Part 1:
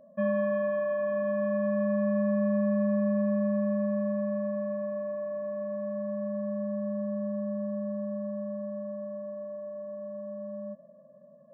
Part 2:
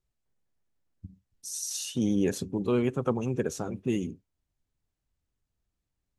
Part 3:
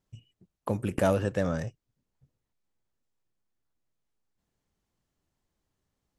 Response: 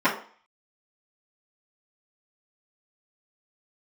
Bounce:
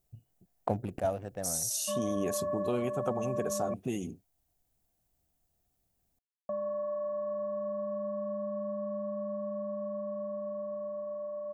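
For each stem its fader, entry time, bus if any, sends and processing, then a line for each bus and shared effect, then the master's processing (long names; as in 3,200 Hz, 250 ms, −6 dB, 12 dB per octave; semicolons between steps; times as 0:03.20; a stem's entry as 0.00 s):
−7.0 dB, 1.70 s, muted 0:03.74–0:06.49, bus A, no send, low-pass with resonance 1,100 Hz, resonance Q 4.1
+0.5 dB, 0.00 s, bus A, no send, high-shelf EQ 9,400 Hz +12 dB
−3.0 dB, 0.00 s, no bus, no send, adaptive Wiener filter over 41 samples; automatic ducking −10 dB, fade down 0.25 s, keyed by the second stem
bus A: 0.0 dB, high-shelf EQ 6,300 Hz +7 dB; downward compressor 2 to 1, threshold −36 dBFS, peak gain reduction 9 dB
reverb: not used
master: parametric band 710 Hz +14.5 dB 0.35 octaves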